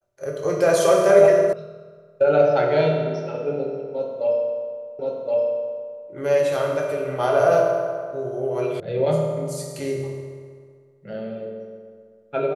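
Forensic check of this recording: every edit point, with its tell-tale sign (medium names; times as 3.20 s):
1.53 s: sound stops dead
4.99 s: repeat of the last 1.07 s
8.80 s: sound stops dead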